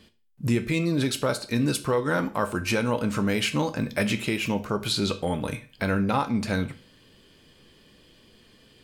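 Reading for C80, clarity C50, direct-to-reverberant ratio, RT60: 20.0 dB, 16.0 dB, 8.5 dB, 0.40 s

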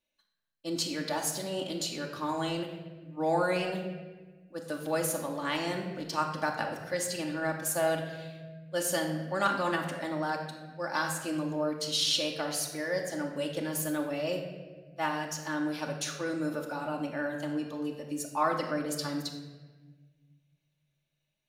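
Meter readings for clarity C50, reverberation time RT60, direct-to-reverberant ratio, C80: 6.0 dB, 1.4 s, 0.5 dB, 7.5 dB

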